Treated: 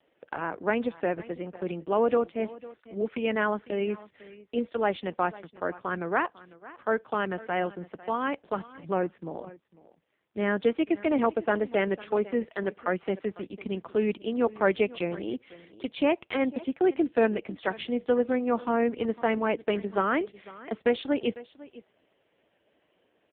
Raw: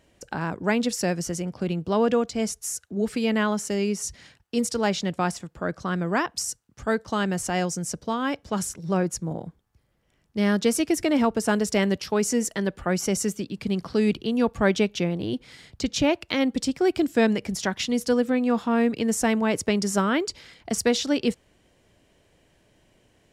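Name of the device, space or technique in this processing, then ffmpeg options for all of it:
satellite phone: -af "highpass=310,lowpass=3300,aecho=1:1:500:0.112" -ar 8000 -c:a libopencore_amrnb -b:a 5150

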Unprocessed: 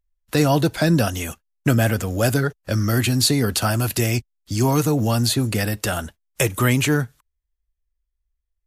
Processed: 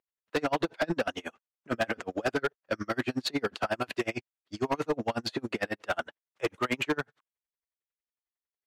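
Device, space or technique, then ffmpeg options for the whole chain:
helicopter radio: -af "highpass=370,lowpass=2600,aeval=exprs='val(0)*pow(10,-36*(0.5-0.5*cos(2*PI*11*n/s))/20)':channel_layout=same,asoftclip=type=hard:threshold=-25.5dB,volume=3.5dB"

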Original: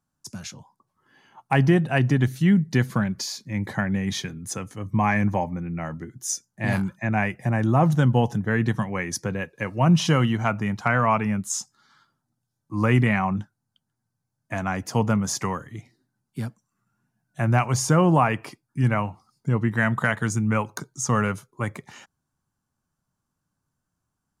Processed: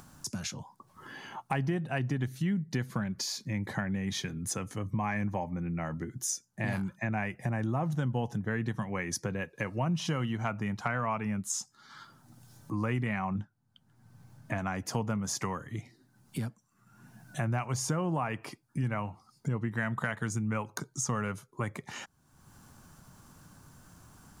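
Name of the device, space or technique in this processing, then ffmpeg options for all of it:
upward and downward compression: -filter_complex "[0:a]asettb=1/sr,asplit=3[link_01][link_02][link_03];[link_01]atrim=end=13.354[link_04];[link_02]atrim=start=13.35:end=14.59,asetpts=PTS-STARTPTS,afade=type=in:duration=0.004:curve=qsin,afade=type=out:start_time=1.236:duration=0.004:curve=qsin,bass=frequency=250:gain=3,treble=frequency=4000:gain=-7[link_05];[link_03]atrim=start=14.586[link_06];[link_04][link_05]acrossfade=duration=0.004:curve1=hsin:curve2=qsin[link_07];[link_07][link_06]acrossfade=duration=0.004:curve1=qsin:curve2=hsin,acompressor=mode=upward:threshold=-40dB:ratio=2.5,acompressor=threshold=-37dB:ratio=3,volume=3.5dB"

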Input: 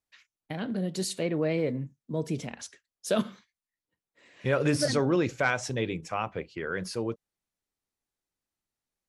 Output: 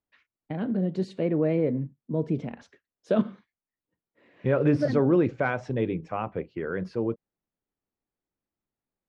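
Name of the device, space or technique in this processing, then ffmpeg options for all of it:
phone in a pocket: -af "lowpass=3600,equalizer=frequency=260:width_type=o:width=2.5:gain=5,highshelf=frequency=2400:gain=-11.5"

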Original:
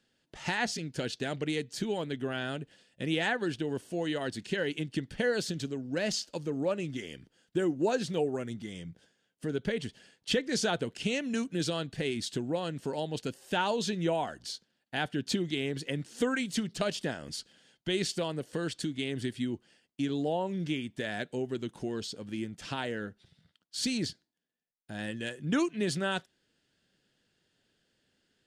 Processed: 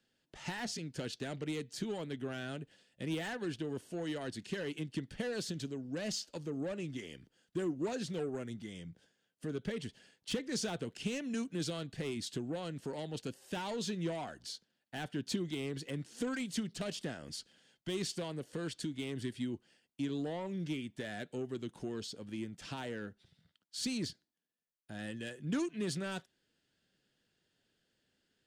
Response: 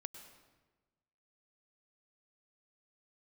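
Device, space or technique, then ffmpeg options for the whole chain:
one-band saturation: -filter_complex "[0:a]acrossover=split=340|5000[link_01][link_02][link_03];[link_02]asoftclip=type=tanh:threshold=-34dB[link_04];[link_01][link_04][link_03]amix=inputs=3:normalize=0,volume=-4.5dB"

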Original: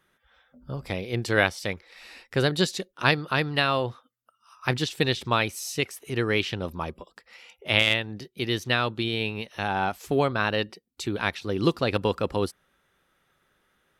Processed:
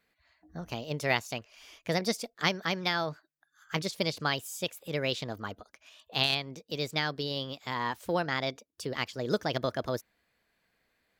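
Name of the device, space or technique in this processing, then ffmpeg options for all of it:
nightcore: -af "asetrate=55125,aresample=44100,volume=-6dB"

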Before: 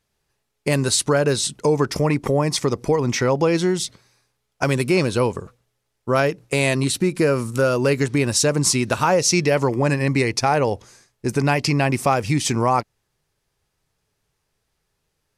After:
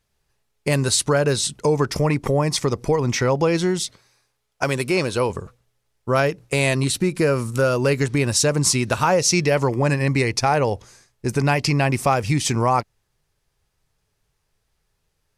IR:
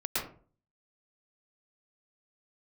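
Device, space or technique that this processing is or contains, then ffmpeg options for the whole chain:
low shelf boost with a cut just above: -filter_complex "[0:a]asettb=1/sr,asplit=3[link_01][link_02][link_03];[link_01]atrim=end=3.794[link_04];[link_02]atrim=start=3.79:end=5.3,asetpts=PTS-STARTPTS,afade=type=in:duration=0.004:curve=qsin,afade=type=out:start_time=1.506:duration=0.004:curve=qsin,bass=frequency=250:gain=-6,treble=frequency=4000:gain=0[link_05];[link_03]atrim=start=5.296[link_06];[link_04][link_05]acrossfade=duration=0.004:curve1=hsin:curve2=qsin[link_07];[link_07][link_06]acrossfade=duration=0.004:curve1=qsin:curve2=hsin,lowshelf=frequency=70:gain=7.5,equalizer=frequency=280:width_type=o:width=1.1:gain=-2.5"

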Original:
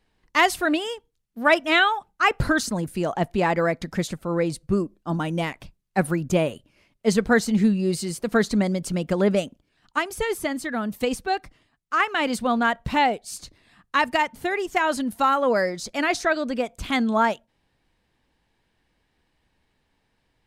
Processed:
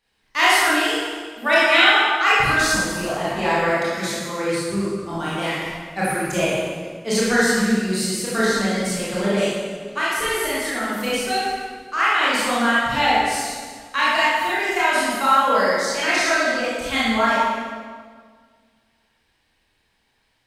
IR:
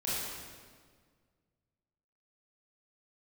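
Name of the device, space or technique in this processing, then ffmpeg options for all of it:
stairwell: -filter_complex "[1:a]atrim=start_sample=2205[link_01];[0:a][link_01]afir=irnorm=-1:irlink=0,asettb=1/sr,asplit=3[link_02][link_03][link_04];[link_02]atrim=end=3.744[link_05];[link_03]atrim=start=3.74:end=5.13,asetpts=PTS-STARTPTS,afade=type=in:duration=0.004:curve=qsin,afade=type=out:start_time=1.386:duration=0.004:curve=qsin,highpass=79[link_06];[link_04]atrim=start=5.126[link_07];[link_05][link_06]acrossfade=duration=0.004:curve1=hsin:curve2=qsin[link_08];[link_08][link_07]acrossfade=duration=0.004:curve1=qsin:curve2=hsin,tiltshelf=frequency=730:gain=-6.5,volume=-3.5dB"

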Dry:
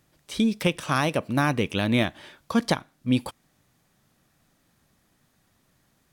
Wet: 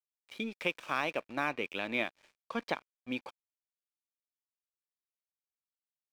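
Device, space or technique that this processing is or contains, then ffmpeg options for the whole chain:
pocket radio on a weak battery: -filter_complex "[0:a]highpass=350,lowpass=3400,aeval=exprs='sgn(val(0))*max(abs(val(0))-0.00562,0)':channel_layout=same,equalizer=frequency=2400:width_type=o:width=0.21:gain=8.5,asettb=1/sr,asplit=3[link_01][link_02][link_03];[link_01]atrim=end=0.594[link_04];[link_02]atrim=start=0.59:end=1.49,asetpts=PTS-STARTPTS,afade=type=in:duration=0.004:curve=qsin,afade=type=out:start_time=0.896:duration=0.004:curve=qsin,highshelf=frequency=5800:gain=5.5[link_05];[link_03]atrim=start=1.486[link_06];[link_04][link_05]acrossfade=duration=0.004:curve1=hsin:curve2=qsin[link_07];[link_07][link_06]acrossfade=duration=0.004:curve1=qsin:curve2=hsin,volume=-8dB"

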